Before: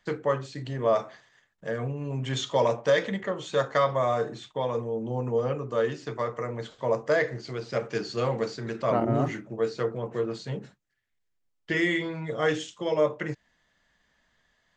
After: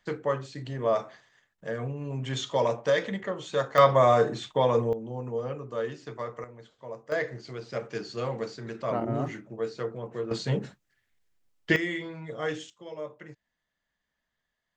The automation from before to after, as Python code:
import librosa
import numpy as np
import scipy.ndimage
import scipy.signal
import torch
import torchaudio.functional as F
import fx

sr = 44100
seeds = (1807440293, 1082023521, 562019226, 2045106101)

y = fx.gain(x, sr, db=fx.steps((0.0, -2.0), (3.78, 5.5), (4.93, -5.5), (6.44, -14.0), (7.12, -4.5), (10.31, 6.0), (11.76, -6.0), (12.7, -14.0)))